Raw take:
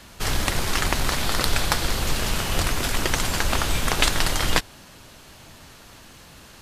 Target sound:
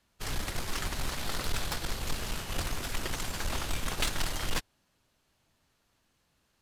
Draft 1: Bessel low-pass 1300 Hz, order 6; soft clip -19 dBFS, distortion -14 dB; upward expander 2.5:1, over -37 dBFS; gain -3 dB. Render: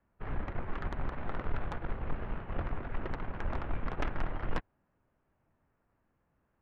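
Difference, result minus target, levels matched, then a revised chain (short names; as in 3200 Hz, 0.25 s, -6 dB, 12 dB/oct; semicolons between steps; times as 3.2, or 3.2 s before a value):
1000 Hz band +3.0 dB
soft clip -19 dBFS, distortion -12 dB; upward expander 2.5:1, over -37 dBFS; gain -3 dB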